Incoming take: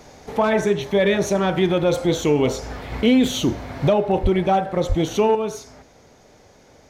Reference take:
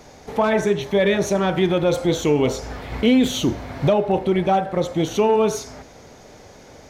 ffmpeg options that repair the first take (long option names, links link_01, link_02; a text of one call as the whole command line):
ffmpeg -i in.wav -filter_complex "[0:a]asplit=3[link_01][link_02][link_03];[link_01]afade=type=out:start_time=4.22:duration=0.02[link_04];[link_02]highpass=frequency=140:width=0.5412,highpass=frequency=140:width=1.3066,afade=type=in:start_time=4.22:duration=0.02,afade=type=out:start_time=4.34:duration=0.02[link_05];[link_03]afade=type=in:start_time=4.34:duration=0.02[link_06];[link_04][link_05][link_06]amix=inputs=3:normalize=0,asplit=3[link_07][link_08][link_09];[link_07]afade=type=out:start_time=4.88:duration=0.02[link_10];[link_08]highpass=frequency=140:width=0.5412,highpass=frequency=140:width=1.3066,afade=type=in:start_time=4.88:duration=0.02,afade=type=out:start_time=5:duration=0.02[link_11];[link_09]afade=type=in:start_time=5:duration=0.02[link_12];[link_10][link_11][link_12]amix=inputs=3:normalize=0,asetnsamples=nb_out_samples=441:pad=0,asendcmd='5.35 volume volume 6.5dB',volume=0dB" out.wav